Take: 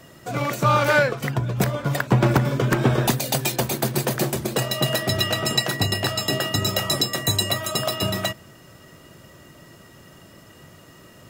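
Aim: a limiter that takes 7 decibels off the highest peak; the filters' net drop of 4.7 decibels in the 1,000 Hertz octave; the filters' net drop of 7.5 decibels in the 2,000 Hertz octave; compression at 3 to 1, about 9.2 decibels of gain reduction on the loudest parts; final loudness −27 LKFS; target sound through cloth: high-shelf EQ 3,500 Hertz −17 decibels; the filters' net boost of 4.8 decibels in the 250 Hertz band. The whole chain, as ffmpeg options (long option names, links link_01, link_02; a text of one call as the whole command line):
ffmpeg -i in.wav -af "equalizer=frequency=250:width_type=o:gain=7,equalizer=frequency=1000:width_type=o:gain=-3.5,equalizer=frequency=2000:width_type=o:gain=-4,acompressor=threshold=-24dB:ratio=3,alimiter=limit=-17dB:level=0:latency=1,highshelf=frequency=3500:gain=-17,volume=3dB" out.wav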